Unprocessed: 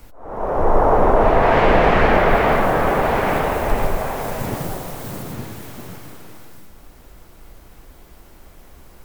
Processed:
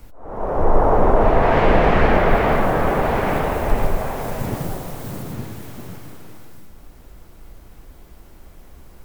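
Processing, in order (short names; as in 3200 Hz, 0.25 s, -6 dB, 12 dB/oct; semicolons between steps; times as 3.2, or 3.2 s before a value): low shelf 350 Hz +5 dB; gain -3 dB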